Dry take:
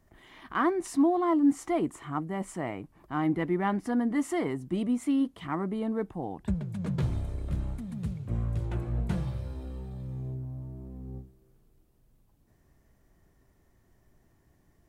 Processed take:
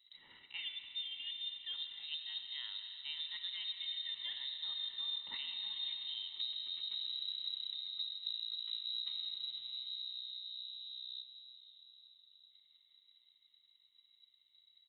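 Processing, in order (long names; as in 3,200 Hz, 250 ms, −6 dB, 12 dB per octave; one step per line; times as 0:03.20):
source passing by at 0:05.27, 7 m/s, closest 5.6 metres
comb filter 1.1 ms, depth 70%
brickwall limiter −28 dBFS, peak gain reduction 10.5 dB
reversed playback
downward compressor 5 to 1, threshold −51 dBFS, peak gain reduction 17.5 dB
reversed playback
transient designer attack +6 dB, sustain −4 dB
on a send: feedback delay with all-pass diffusion 614 ms, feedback 45%, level −14.5 dB
on the sum: comb and all-pass reverb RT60 3.9 s, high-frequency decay 0.9×, pre-delay 30 ms, DRR 5.5 dB
voice inversion scrambler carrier 3,900 Hz
level +6.5 dB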